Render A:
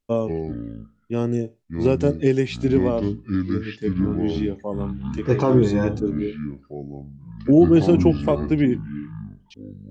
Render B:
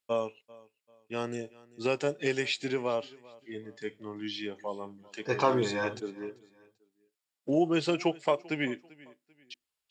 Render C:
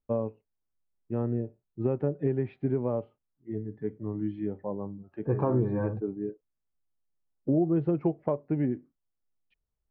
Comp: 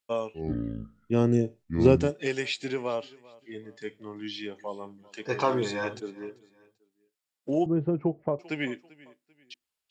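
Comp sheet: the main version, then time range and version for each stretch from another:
B
0.42–2.04 from A, crossfade 0.16 s
7.66–8.39 from C

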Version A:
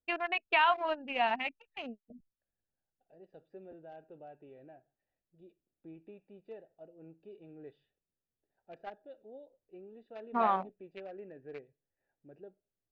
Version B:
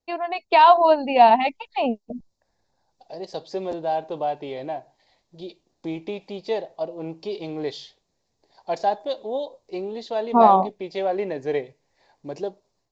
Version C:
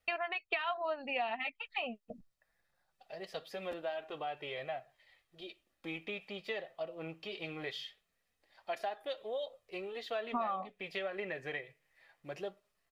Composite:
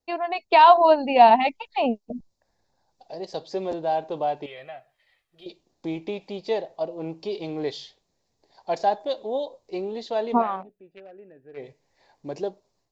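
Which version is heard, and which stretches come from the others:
B
4.46–5.46 from C
10.39–11.61 from A, crossfade 0.10 s

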